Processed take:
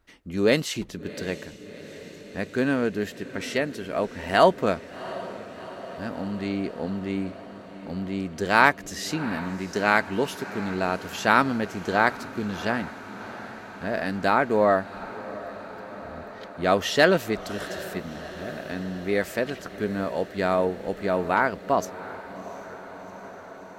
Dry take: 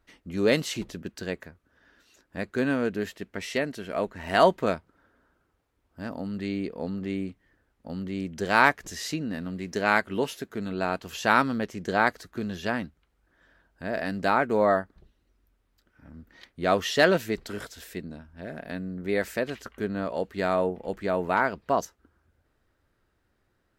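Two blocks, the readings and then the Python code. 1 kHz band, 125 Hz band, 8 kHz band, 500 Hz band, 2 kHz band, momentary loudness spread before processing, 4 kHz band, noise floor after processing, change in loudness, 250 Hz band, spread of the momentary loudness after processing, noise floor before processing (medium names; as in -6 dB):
+2.0 dB, +2.5 dB, +2.5 dB, +2.0 dB, +2.5 dB, 16 LU, +2.5 dB, -43 dBFS, +1.5 dB, +2.5 dB, 18 LU, -72 dBFS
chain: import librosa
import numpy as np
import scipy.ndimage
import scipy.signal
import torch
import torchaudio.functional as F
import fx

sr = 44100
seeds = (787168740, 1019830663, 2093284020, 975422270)

y = fx.echo_diffused(x, sr, ms=721, feedback_pct=73, wet_db=-15.5)
y = y * librosa.db_to_amplitude(2.0)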